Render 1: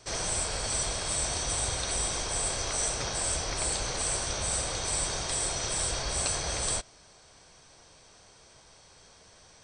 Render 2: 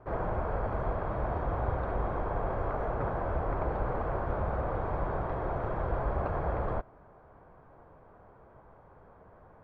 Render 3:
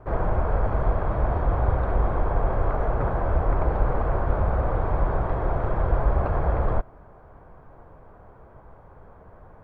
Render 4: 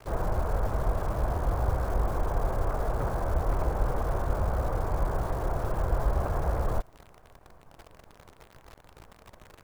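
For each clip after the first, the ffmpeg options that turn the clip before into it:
-af "lowpass=f=1.3k:w=0.5412,lowpass=f=1.3k:w=1.3066,volume=4.5dB"
-af "lowshelf=f=74:g=9.5,volume=5dB"
-af "acrusher=bits=8:dc=4:mix=0:aa=0.000001,volume=-5dB"

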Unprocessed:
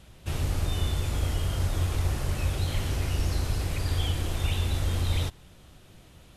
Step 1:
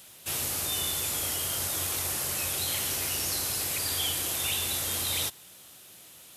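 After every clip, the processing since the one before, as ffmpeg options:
-af "highpass=83,aemphasis=mode=production:type=riaa"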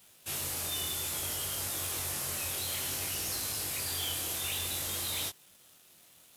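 -af "asoftclip=type=hard:threshold=-26.5dB,flanger=delay=19.5:depth=4.9:speed=0.58,aeval=exprs='sgn(val(0))*max(abs(val(0))-0.00133,0)':c=same"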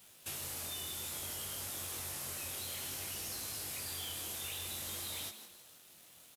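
-filter_complex "[0:a]acompressor=threshold=-40dB:ratio=5,asplit=2[a][b];[b]asplit=4[c][d][e][f];[c]adelay=161,afreqshift=130,volume=-11dB[g];[d]adelay=322,afreqshift=260,volume=-18.5dB[h];[e]adelay=483,afreqshift=390,volume=-26.1dB[i];[f]adelay=644,afreqshift=520,volume=-33.6dB[j];[g][h][i][j]amix=inputs=4:normalize=0[k];[a][k]amix=inputs=2:normalize=0"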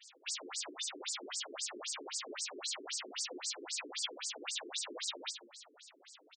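-filter_complex "[0:a]flanger=delay=6.4:depth=5.9:regen=-70:speed=1.8:shape=sinusoidal,asplit=2[a][b];[b]adelay=14,volume=-3dB[c];[a][c]amix=inputs=2:normalize=0,afftfilt=real='re*between(b*sr/1024,310*pow(6400/310,0.5+0.5*sin(2*PI*3.8*pts/sr))/1.41,310*pow(6400/310,0.5+0.5*sin(2*PI*3.8*pts/sr))*1.41)':imag='im*between(b*sr/1024,310*pow(6400/310,0.5+0.5*sin(2*PI*3.8*pts/sr))/1.41,310*pow(6400/310,0.5+0.5*sin(2*PI*3.8*pts/sr))*1.41)':win_size=1024:overlap=0.75,volume=13.5dB"

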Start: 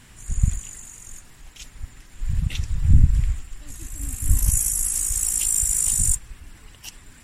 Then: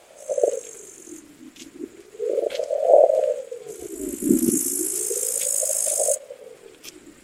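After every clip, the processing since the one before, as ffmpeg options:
-af "aeval=exprs='val(0)*sin(2*PI*440*n/s+440*0.35/0.34*sin(2*PI*0.34*n/s))':c=same,volume=1dB"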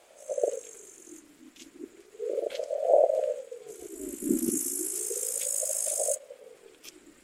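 -af "equalizer=f=110:t=o:w=1.6:g=-7,volume=-7dB"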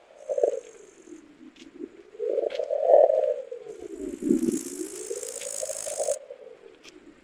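-af "adynamicsmooth=sensitivity=2:basefreq=3.8k,volume=4.5dB"

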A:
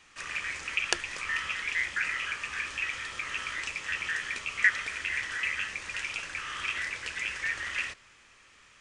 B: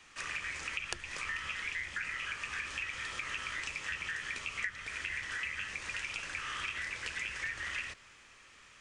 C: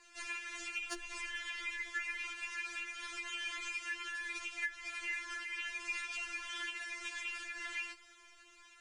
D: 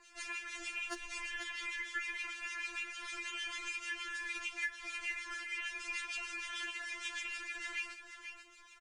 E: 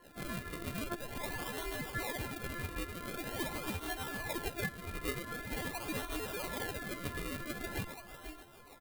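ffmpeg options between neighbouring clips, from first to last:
-filter_complex "[0:a]acrossover=split=190[a][b];[b]acompressor=threshold=-35dB:ratio=6[c];[a][c]amix=inputs=2:normalize=0"
-af "aeval=exprs='clip(val(0),-1,0.075)':c=same,afftfilt=real='re*4*eq(mod(b,16),0)':imag='im*4*eq(mod(b,16),0)':win_size=2048:overlap=0.75"
-filter_complex "[0:a]acrossover=split=1800[a][b];[a]aeval=exprs='val(0)*(1-0.7/2+0.7/2*cos(2*PI*6.6*n/s))':c=same[c];[b]aeval=exprs='val(0)*(1-0.7/2-0.7/2*cos(2*PI*6.6*n/s))':c=same[d];[c][d]amix=inputs=2:normalize=0,aecho=1:1:488:0.335,volume=3.5dB"
-filter_complex "[0:a]acrossover=split=1800[a][b];[b]acrusher=samples=36:mix=1:aa=0.000001:lfo=1:lforange=36:lforate=0.45[c];[a][c]amix=inputs=2:normalize=0,aexciter=amount=1.6:drive=6:freq=3.3k,volume=3.5dB"

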